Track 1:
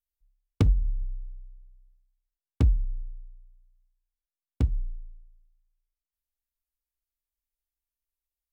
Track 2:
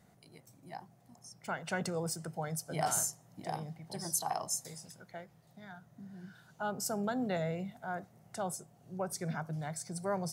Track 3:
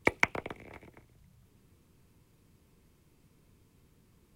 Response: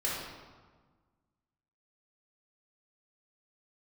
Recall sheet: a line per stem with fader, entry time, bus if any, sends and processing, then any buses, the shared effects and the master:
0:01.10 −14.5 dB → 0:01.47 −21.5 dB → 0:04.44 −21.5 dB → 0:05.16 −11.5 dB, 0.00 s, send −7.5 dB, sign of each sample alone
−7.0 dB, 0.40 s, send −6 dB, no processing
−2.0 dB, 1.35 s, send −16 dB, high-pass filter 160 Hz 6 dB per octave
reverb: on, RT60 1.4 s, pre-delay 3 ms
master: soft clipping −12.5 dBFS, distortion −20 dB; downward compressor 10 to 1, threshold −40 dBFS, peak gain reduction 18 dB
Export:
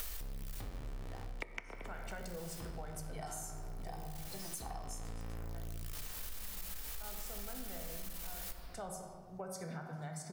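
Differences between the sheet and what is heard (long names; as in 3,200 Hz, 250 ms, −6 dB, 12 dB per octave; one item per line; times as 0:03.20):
stem 1 −14.5 dB → −6.0 dB
master: missing soft clipping −12.5 dBFS, distortion −20 dB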